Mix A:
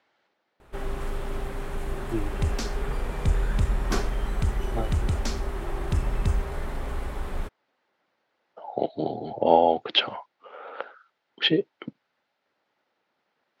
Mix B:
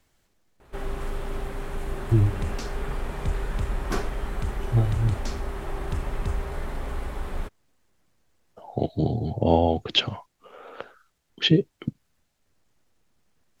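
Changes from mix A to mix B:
speech: remove cabinet simulation 320–4400 Hz, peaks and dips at 560 Hz +4 dB, 850 Hz +6 dB, 1.4 kHz +5 dB, 2 kHz +3 dB; second sound -5.0 dB

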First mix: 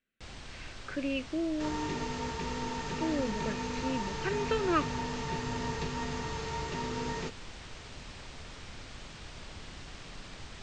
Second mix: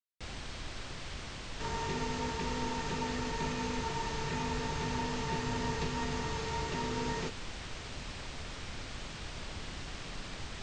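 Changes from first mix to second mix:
speech: muted; first sound +3.5 dB

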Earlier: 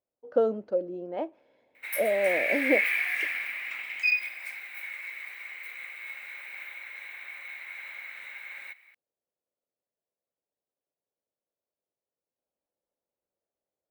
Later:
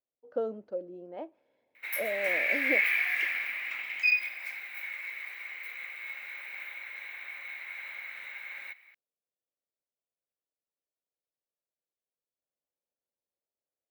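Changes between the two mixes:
speech -8.0 dB; master: add peaking EQ 9 kHz -11.5 dB 0.32 oct

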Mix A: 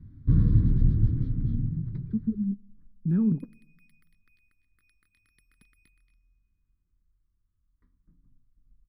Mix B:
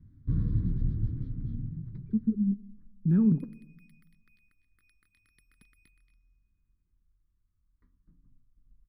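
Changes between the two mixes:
speech: send +9.5 dB; first sound -7.5 dB

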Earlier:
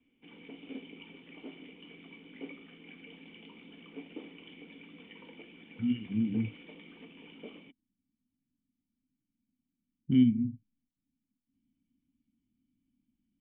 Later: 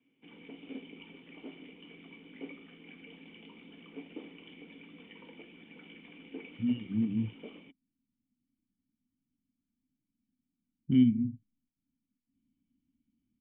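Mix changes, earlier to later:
speech: entry +0.80 s; master: add distance through air 70 m

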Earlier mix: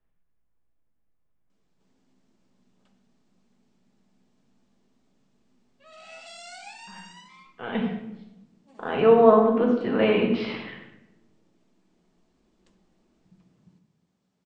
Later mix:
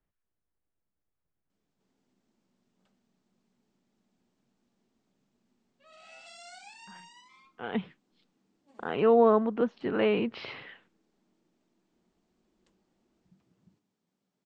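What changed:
background -4.5 dB; reverb: off

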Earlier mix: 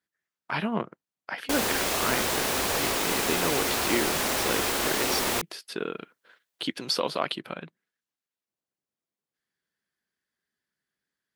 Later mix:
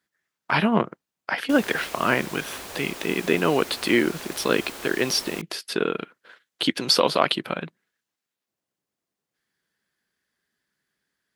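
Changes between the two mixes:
speech +8.0 dB; background -11.5 dB

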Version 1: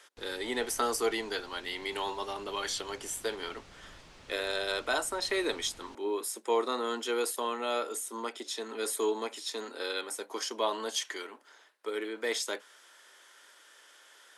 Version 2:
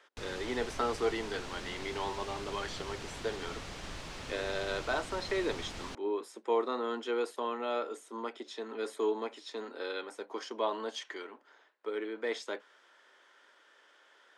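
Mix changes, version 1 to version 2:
speech: add tape spacing loss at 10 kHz 22 dB; background +10.5 dB

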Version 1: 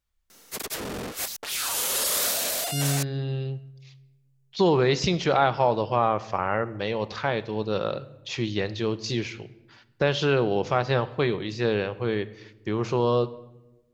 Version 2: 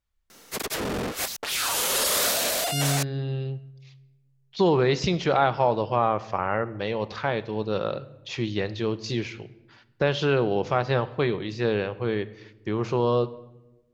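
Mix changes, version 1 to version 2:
background +5.0 dB; master: add treble shelf 5.1 kHz -6 dB

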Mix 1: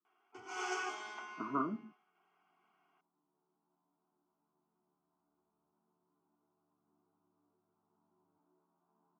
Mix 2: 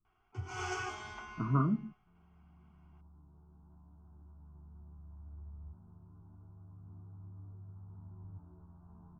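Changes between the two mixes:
second sound +11.0 dB; master: remove high-pass 280 Hz 24 dB/octave

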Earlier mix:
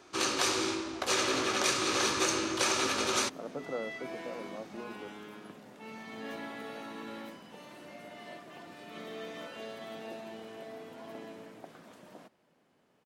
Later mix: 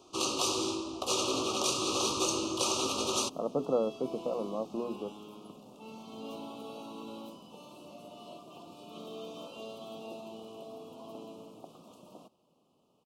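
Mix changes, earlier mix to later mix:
speech +9.0 dB; master: add Chebyshev band-stop 1.2–2.7 kHz, order 3

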